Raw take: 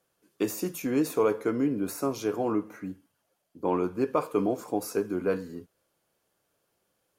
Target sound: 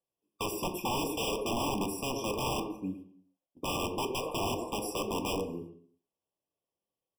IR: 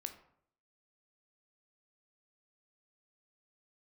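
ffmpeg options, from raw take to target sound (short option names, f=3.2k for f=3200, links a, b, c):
-filter_complex "[0:a]agate=range=-17dB:threshold=-47dB:ratio=16:detection=peak,asplit=2[a][b];[b]aeval=exprs='0.0531*(abs(mod(val(0)/0.0531+3,4)-2)-1)':c=same,volume=-7.5dB[c];[a][c]amix=inputs=2:normalize=0,asplit=2[d][e];[e]adelay=110,highpass=300,lowpass=3.4k,asoftclip=type=hard:threshold=-23dB,volume=-8dB[f];[d][f]amix=inputs=2:normalize=0,acrossover=split=1700[g][h];[g]aeval=exprs='(mod(14.1*val(0)+1,2)-1)/14.1':c=same[i];[i][h]amix=inputs=2:normalize=0[j];[1:a]atrim=start_sample=2205,afade=t=out:st=0.39:d=0.01,atrim=end_sample=17640[k];[j][k]afir=irnorm=-1:irlink=0,afftfilt=real='re*eq(mod(floor(b*sr/1024/1200),2),0)':imag='im*eq(mod(floor(b*sr/1024/1200),2),0)':win_size=1024:overlap=0.75"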